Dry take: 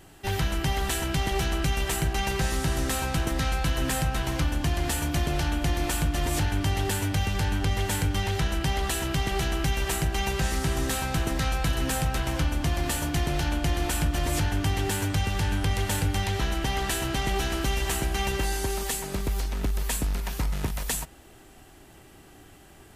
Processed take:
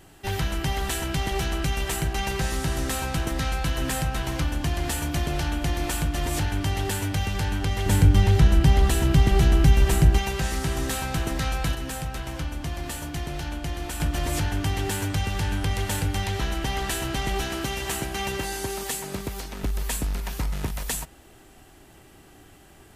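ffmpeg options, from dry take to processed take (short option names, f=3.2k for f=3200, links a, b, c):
-filter_complex "[0:a]asettb=1/sr,asplit=3[a][b][c];[a]atrim=end=7.864[d];[b]atrim=start=7.86:end=10.18,asetpts=PTS-STARTPTS,afade=t=in:d=0.004:c=qsin,afade=t=out:st=2.316:d=0.004:c=qsin,lowshelf=f=370:g=11.5[e];[c]atrim=start=10.176[f];[d][e]acrossfade=d=0.004:c1=hsin:c2=qsin[g];[g][f]acrossfade=d=0.004:c1=qsin:c2=hsin,asettb=1/sr,asplit=3[h][i][j];[h]atrim=end=17.444[k];[i]atrim=start=17.44:end=19.64,asetpts=PTS-STARTPTS,afade=t=in:d=0.004:c=qsin,afade=t=out:st=2.196:d=0.004:c=qsin,highpass=84[l];[j]atrim=start=19.636[m];[k][l]acrossfade=d=0.004:c1=hsin:c2=qsin[n];[n][m]acrossfade=d=0.004:c1=qsin:c2=hsin,asplit=3[o][p][q];[o]atrim=end=11.752[r];[p]atrim=start=11.748:end=14.002,asetpts=PTS-STARTPTS,volume=-5dB[s];[q]atrim=start=13.998[t];[r][s]acrossfade=d=0.004:c1=hsin:c2=hsin[u];[u][t]acrossfade=d=0.004:c1=hsin:c2=hsin"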